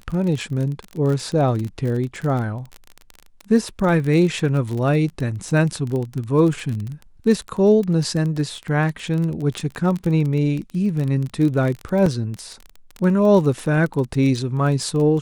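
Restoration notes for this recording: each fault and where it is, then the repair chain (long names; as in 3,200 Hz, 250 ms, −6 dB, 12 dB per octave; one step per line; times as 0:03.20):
surface crackle 25 per second −24 dBFS
0:12.06: drop-out 4.1 ms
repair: click removal
repair the gap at 0:12.06, 4.1 ms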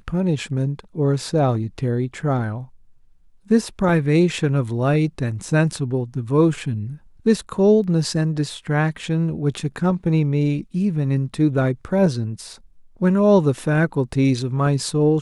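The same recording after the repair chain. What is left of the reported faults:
none of them is left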